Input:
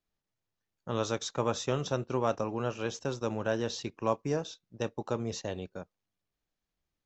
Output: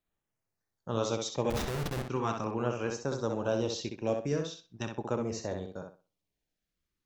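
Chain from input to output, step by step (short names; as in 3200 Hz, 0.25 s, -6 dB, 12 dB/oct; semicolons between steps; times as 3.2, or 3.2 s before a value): LFO notch saw down 0.41 Hz 470–5600 Hz; 1.5–2.09 Schmitt trigger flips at -33.5 dBFS; tape echo 64 ms, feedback 28%, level -4 dB, low-pass 4700 Hz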